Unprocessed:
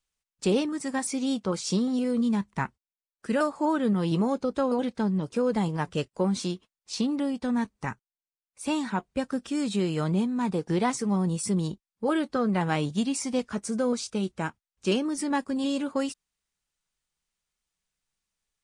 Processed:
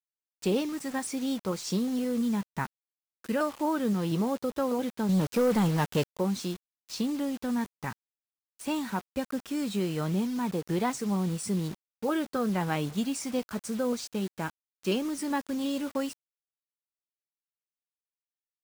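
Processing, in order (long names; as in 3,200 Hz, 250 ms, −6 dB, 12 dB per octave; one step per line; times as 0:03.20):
high-shelf EQ 6,400 Hz −2.5 dB
bit reduction 7 bits
0:05.09–0:06.15: leveller curve on the samples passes 2
level −3 dB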